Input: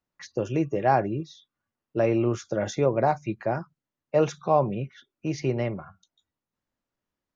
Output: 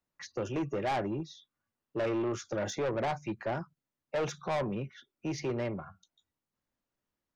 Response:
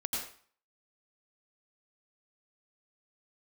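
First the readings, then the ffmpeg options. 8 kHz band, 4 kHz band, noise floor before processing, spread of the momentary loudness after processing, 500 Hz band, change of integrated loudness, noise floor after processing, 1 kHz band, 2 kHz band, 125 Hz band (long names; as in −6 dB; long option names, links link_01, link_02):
can't be measured, −1.0 dB, below −85 dBFS, 11 LU, −8.5 dB, −8.0 dB, below −85 dBFS, −9.5 dB, −4.0 dB, −9.5 dB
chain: -filter_complex "[0:a]acrossover=split=170[link_01][link_02];[link_01]alimiter=level_in=12.5dB:limit=-24dB:level=0:latency=1,volume=-12.5dB[link_03];[link_03][link_02]amix=inputs=2:normalize=0,asoftclip=type=tanh:threshold=-25.5dB,volume=-2dB"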